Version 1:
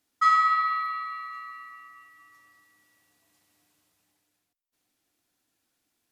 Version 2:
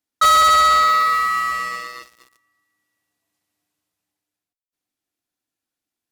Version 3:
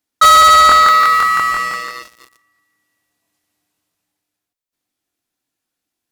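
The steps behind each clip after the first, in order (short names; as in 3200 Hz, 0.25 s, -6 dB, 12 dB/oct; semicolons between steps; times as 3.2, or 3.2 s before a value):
sample leveller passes 5; gain +1 dB
crackling interface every 0.17 s, samples 1024, repeat, from 0.67; gain +6 dB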